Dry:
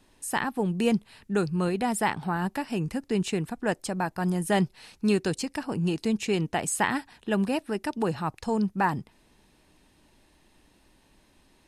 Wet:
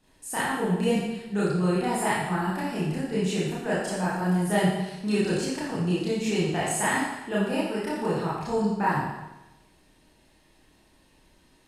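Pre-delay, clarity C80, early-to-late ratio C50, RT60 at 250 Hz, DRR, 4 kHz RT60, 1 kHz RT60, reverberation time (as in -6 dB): 26 ms, 2.5 dB, -0.5 dB, 1.0 s, -8.5 dB, 0.95 s, 1.0 s, 1.0 s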